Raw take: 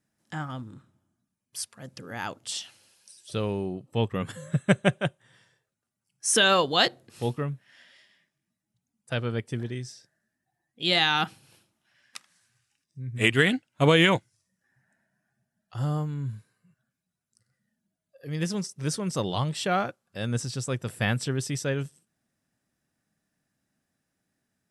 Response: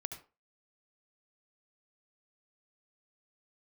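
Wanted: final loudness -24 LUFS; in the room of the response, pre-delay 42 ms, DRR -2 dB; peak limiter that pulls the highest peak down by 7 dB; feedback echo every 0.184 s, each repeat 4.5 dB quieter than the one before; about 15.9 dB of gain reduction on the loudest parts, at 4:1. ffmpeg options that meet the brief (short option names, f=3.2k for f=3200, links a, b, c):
-filter_complex "[0:a]acompressor=threshold=-35dB:ratio=4,alimiter=level_in=3.5dB:limit=-24dB:level=0:latency=1,volume=-3.5dB,aecho=1:1:184|368|552|736|920|1104|1288|1472|1656:0.596|0.357|0.214|0.129|0.0772|0.0463|0.0278|0.0167|0.01,asplit=2[a][b];[1:a]atrim=start_sample=2205,adelay=42[c];[b][c]afir=irnorm=-1:irlink=0,volume=3.5dB[d];[a][d]amix=inputs=2:normalize=0,volume=10.5dB"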